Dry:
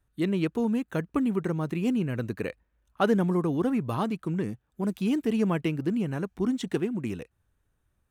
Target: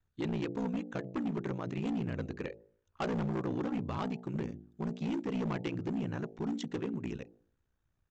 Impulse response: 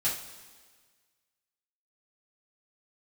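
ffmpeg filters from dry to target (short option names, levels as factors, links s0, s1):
-af "bandreject=f=52.81:t=h:w=4,bandreject=f=105.62:t=h:w=4,bandreject=f=158.43:t=h:w=4,bandreject=f=211.24:t=h:w=4,bandreject=f=264.05:t=h:w=4,bandreject=f=316.86:t=h:w=4,bandreject=f=369.67:t=h:w=4,bandreject=f=422.48:t=h:w=4,bandreject=f=475.29:t=h:w=4,bandreject=f=528.1:t=h:w=4,bandreject=f=580.91:t=h:w=4,bandreject=f=633.72:t=h:w=4,bandreject=f=686.53:t=h:w=4,bandreject=f=739.34:t=h:w=4,bandreject=f=792.15:t=h:w=4,bandreject=f=844.96:t=h:w=4,aeval=exprs='val(0)*sin(2*PI*30*n/s)':c=same,aresample=16000,asoftclip=type=hard:threshold=0.0447,aresample=44100,volume=0.75"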